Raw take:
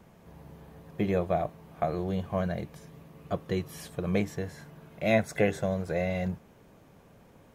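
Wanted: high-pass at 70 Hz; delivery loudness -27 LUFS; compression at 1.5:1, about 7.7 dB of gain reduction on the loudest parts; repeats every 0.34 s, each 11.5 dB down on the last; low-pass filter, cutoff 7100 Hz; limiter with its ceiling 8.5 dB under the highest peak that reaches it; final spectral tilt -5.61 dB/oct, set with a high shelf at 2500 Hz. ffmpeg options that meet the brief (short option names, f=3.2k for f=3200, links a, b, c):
-af "highpass=70,lowpass=7.1k,highshelf=f=2.5k:g=6.5,acompressor=threshold=-40dB:ratio=1.5,alimiter=level_in=2.5dB:limit=-24dB:level=0:latency=1,volume=-2.5dB,aecho=1:1:340|680|1020:0.266|0.0718|0.0194,volume=12.5dB"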